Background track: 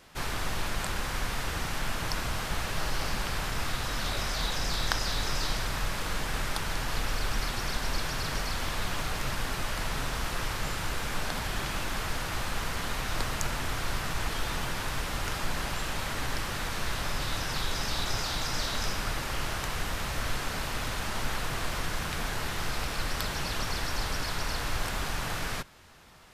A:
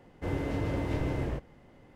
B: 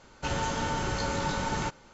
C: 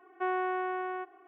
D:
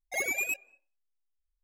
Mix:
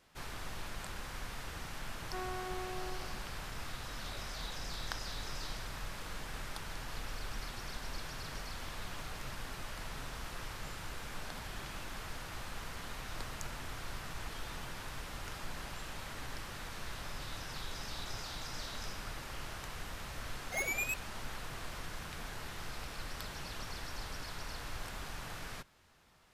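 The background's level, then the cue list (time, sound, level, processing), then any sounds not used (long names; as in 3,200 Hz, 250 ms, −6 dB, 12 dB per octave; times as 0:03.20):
background track −11.5 dB
0:01.92: mix in C −11 dB + single-tap delay 349 ms −7.5 dB
0:20.40: mix in D −5 dB
not used: A, B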